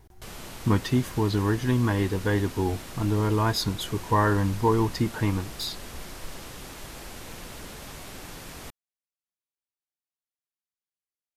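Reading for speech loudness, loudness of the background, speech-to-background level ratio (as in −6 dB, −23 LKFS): −26.0 LKFS, −41.0 LKFS, 15.0 dB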